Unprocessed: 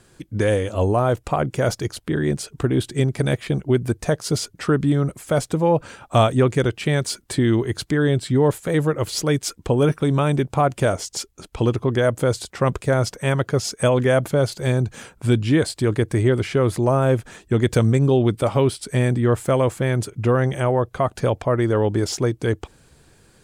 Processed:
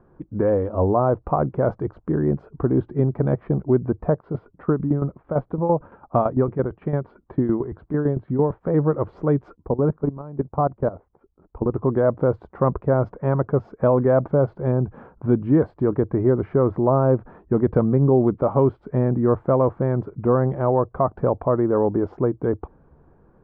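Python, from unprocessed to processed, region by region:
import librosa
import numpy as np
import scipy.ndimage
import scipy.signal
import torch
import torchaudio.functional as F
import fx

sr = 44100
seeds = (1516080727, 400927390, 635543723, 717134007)

y = fx.chain(x, sr, fx.lowpass(hz=4100.0, slope=24),
    fx.tremolo_shape(shape='saw_down', hz=8.9, depth_pct=70), at=(4.12, 8.61))
y = fx.chain(y, sr, fx.air_absorb(metres=230.0),
    fx.level_steps(step_db=18),
    fx.resample_bad(factor=8, down='filtered', up='hold'), at=(9.55, 11.74))
y = scipy.signal.sosfilt(scipy.signal.cheby1(3, 1.0, 1100.0, 'lowpass', fs=sr, output='sos'), y)
y = fx.peak_eq(y, sr, hz=110.0, db=-12.0, octaves=0.23)
y = y * librosa.db_to_amplitude(1.5)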